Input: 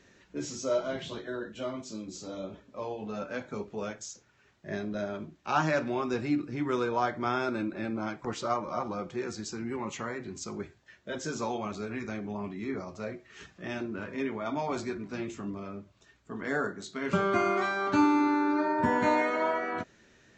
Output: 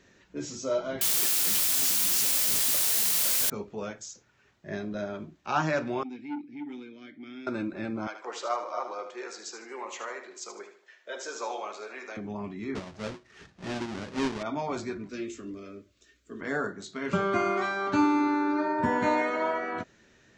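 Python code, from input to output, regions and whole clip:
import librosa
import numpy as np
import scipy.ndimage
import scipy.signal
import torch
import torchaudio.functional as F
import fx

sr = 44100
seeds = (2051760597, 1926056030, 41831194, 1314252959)

y = fx.chain(x, sr, fx.over_compress(threshold_db=-48.0, ratio=-1.0),
    fx.quant_dither(seeds[0], bits=6, dither='triangular'),
    fx.high_shelf(hz=2400.0, db=12.0), at=(1.01, 3.5))
y = fx.chain(y, sr, fx.vowel_filter(vowel='i'),
    fx.high_shelf(hz=3400.0, db=6.5),
    fx.transformer_sat(knee_hz=550.0), at=(6.03, 7.47))
y = fx.chain(y, sr, fx.highpass(hz=430.0, slope=24),
    fx.echo_feedback(ms=76, feedback_pct=36, wet_db=-9), at=(8.07, 12.17))
y = fx.chain(y, sr, fx.halfwave_hold(),
    fx.lowpass(hz=6700.0, slope=24),
    fx.upward_expand(threshold_db=-38.0, expansion=1.5), at=(12.75, 14.43))
y = fx.chain(y, sr, fx.high_shelf(hz=5300.0, db=5.5),
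    fx.fixed_phaser(hz=350.0, stages=4),
    fx.doubler(ms=17.0, db=-12.0), at=(15.09, 16.41))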